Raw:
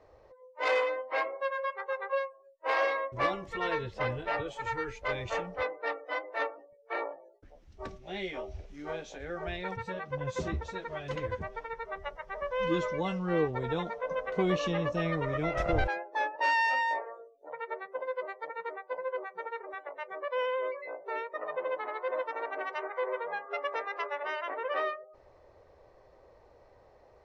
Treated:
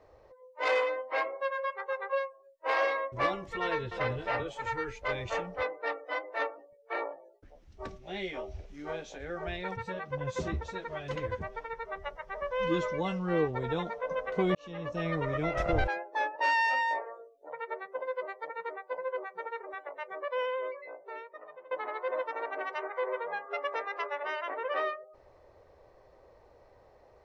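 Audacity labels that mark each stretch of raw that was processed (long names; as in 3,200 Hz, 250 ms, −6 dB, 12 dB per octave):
3.620000	4.150000	delay throw 290 ms, feedback 15%, level −9 dB
14.550000	15.170000	fade in
20.250000	21.710000	fade out, to −20.5 dB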